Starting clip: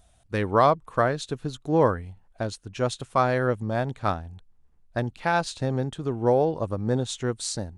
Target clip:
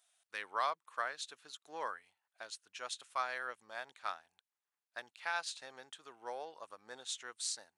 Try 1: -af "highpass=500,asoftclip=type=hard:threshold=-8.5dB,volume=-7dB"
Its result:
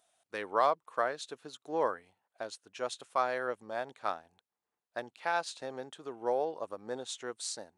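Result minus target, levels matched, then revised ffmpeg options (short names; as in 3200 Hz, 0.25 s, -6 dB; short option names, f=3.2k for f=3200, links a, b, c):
500 Hz band +7.5 dB
-af "highpass=1.4k,asoftclip=type=hard:threshold=-8.5dB,volume=-7dB"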